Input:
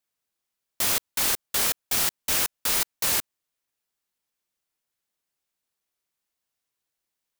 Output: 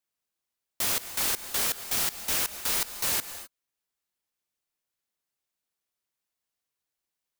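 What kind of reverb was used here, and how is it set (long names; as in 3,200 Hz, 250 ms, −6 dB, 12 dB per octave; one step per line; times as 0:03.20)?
reverb whose tail is shaped and stops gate 280 ms rising, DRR 12 dB
level −3.5 dB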